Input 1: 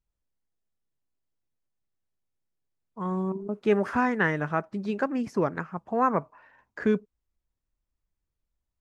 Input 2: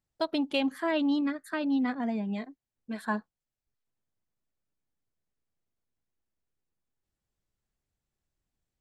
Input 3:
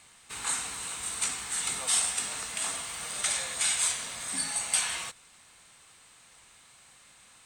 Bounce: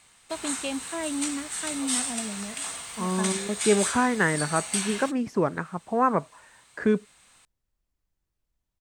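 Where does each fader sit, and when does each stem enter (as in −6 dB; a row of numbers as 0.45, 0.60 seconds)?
+1.5, −4.0, −1.5 decibels; 0.00, 0.10, 0.00 seconds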